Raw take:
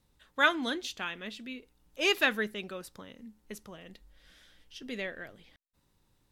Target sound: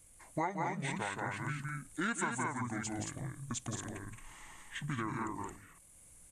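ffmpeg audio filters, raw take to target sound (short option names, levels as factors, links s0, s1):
-filter_complex "[0:a]asetrate=25476,aresample=44100,atempo=1.73107,aexciter=amount=6.4:drive=9.5:freq=7400,asplit=2[s0][s1];[s1]aecho=0:1:172|221.6:0.562|0.562[s2];[s0][s2]amix=inputs=2:normalize=0,acompressor=threshold=0.0112:ratio=5,volume=1.78"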